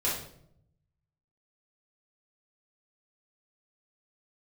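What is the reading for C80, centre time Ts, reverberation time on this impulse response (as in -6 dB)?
8.0 dB, 44 ms, 0.70 s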